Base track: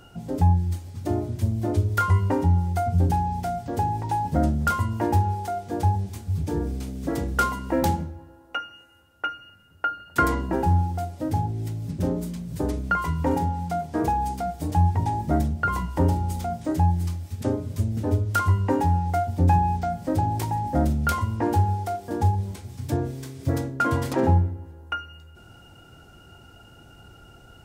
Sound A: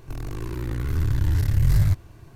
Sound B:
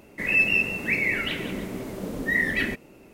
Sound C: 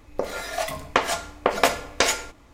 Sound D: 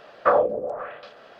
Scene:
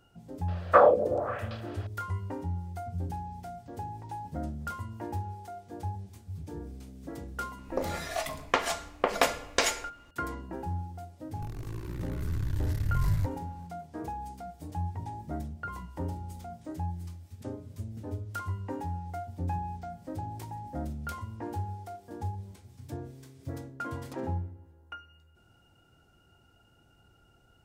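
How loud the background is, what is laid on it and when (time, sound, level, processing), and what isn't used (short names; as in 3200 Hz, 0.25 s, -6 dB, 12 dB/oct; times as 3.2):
base track -14 dB
0.48 add D
7.58 add C -5.5 dB
11.32 add A -9 dB
not used: B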